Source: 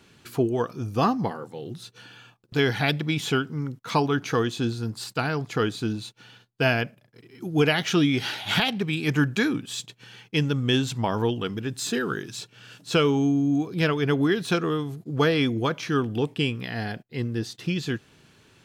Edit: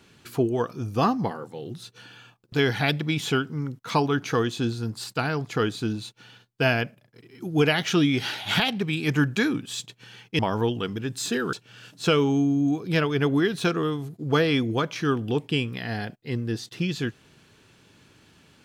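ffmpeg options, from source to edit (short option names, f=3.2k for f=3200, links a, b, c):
-filter_complex "[0:a]asplit=3[a][b][c];[a]atrim=end=10.392[d];[b]atrim=start=10.998:end=12.142[e];[c]atrim=start=12.398[f];[d][e]acrossfade=d=0.004:c1=hsin:c2=hsin[g];[g][f]acrossfade=d=0.004:c1=hsin:c2=hsin"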